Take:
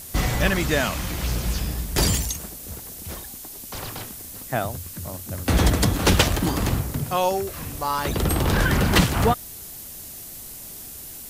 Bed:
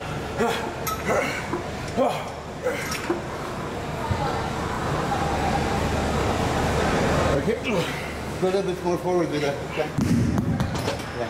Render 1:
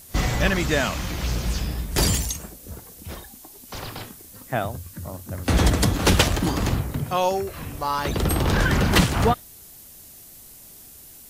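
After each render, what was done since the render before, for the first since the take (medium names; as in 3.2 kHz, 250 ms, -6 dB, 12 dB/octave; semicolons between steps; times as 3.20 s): noise print and reduce 7 dB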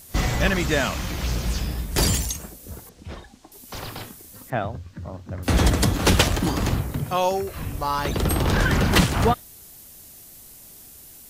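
2.89–3.52 s: distance through air 110 m; 4.50–5.43 s: distance through air 170 m; 7.55–8.06 s: bass shelf 120 Hz +7.5 dB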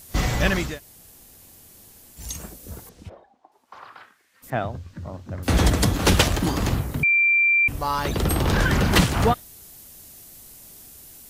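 0.68–2.28 s: room tone, crossfade 0.24 s; 3.08–4.42 s: band-pass filter 560 Hz -> 2.1 kHz, Q 2.5; 7.03–7.68 s: bleep 2.36 kHz -15 dBFS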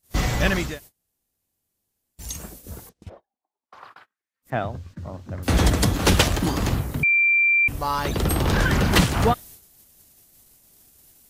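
gate -43 dBFS, range -29 dB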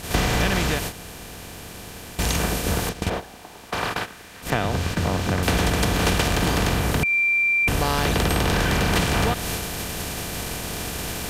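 spectral levelling over time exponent 0.4; compression 5:1, threshold -18 dBFS, peak gain reduction 9 dB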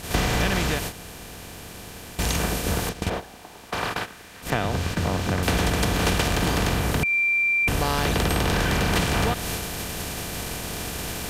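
trim -1.5 dB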